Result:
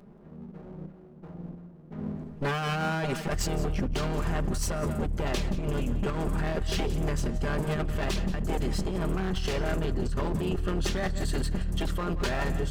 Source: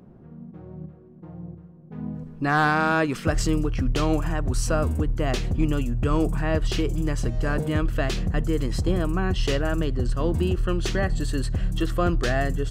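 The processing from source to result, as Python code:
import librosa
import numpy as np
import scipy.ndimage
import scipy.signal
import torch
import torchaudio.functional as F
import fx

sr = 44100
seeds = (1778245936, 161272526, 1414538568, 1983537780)

y = fx.lower_of_two(x, sr, delay_ms=5.0)
y = y + 10.0 ** (-14.5 / 20.0) * np.pad(y, (int(177 * sr / 1000.0), 0))[:len(y)]
y = fx.over_compress(y, sr, threshold_db=-25.0, ratio=-1.0)
y = y * 10.0 ** (-2.5 / 20.0)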